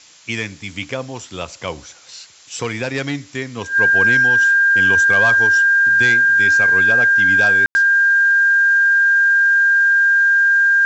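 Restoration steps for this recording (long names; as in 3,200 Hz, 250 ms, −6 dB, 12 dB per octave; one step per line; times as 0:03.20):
notch filter 1,600 Hz, Q 30
ambience match 0:07.66–0:07.75
noise reduction from a noise print 21 dB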